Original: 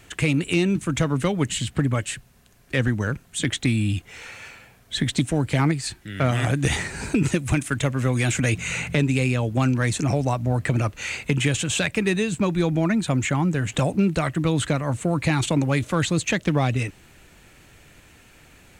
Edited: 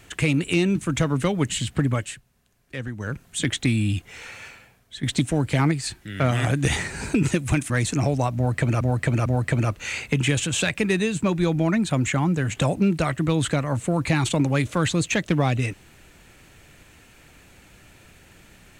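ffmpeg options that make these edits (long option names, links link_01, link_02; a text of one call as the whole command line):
ffmpeg -i in.wav -filter_complex "[0:a]asplit=7[link_01][link_02][link_03][link_04][link_05][link_06][link_07];[link_01]atrim=end=2.21,asetpts=PTS-STARTPTS,afade=type=out:start_time=1.93:duration=0.28:silence=0.316228[link_08];[link_02]atrim=start=2.21:end=2.96,asetpts=PTS-STARTPTS,volume=-10dB[link_09];[link_03]atrim=start=2.96:end=5.03,asetpts=PTS-STARTPTS,afade=type=in:duration=0.28:silence=0.316228,afade=type=out:start_time=1.47:duration=0.6:silence=0.188365[link_10];[link_04]atrim=start=5.03:end=7.702,asetpts=PTS-STARTPTS,afade=type=in:duration=0.004:curve=hsin:silence=0.188365[link_11];[link_05]atrim=start=9.768:end=10.882[link_12];[link_06]atrim=start=10.428:end=10.882[link_13];[link_07]atrim=start=10.428[link_14];[link_08][link_09][link_10][link_11]concat=n=4:v=0:a=1[link_15];[link_15][link_12]acrossfade=duration=0.004:curve1=hsin:curve2=hsin[link_16];[link_16][link_13]acrossfade=duration=0.004:curve1=hsin:curve2=hsin[link_17];[link_17][link_14]acrossfade=duration=0.004:curve1=hsin:curve2=hsin" out.wav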